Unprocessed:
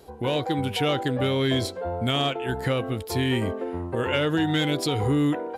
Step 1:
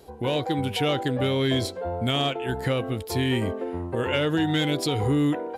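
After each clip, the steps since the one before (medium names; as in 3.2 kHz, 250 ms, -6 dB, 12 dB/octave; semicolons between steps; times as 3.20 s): peaking EQ 1.3 kHz -2 dB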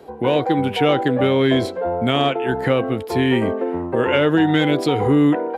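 three-band isolator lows -12 dB, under 150 Hz, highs -13 dB, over 2.7 kHz; trim +8.5 dB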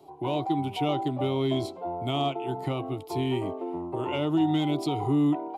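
static phaser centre 330 Hz, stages 8; trim -7 dB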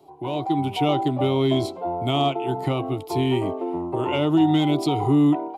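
level rider gain up to 6 dB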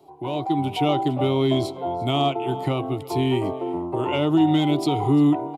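delay 346 ms -20.5 dB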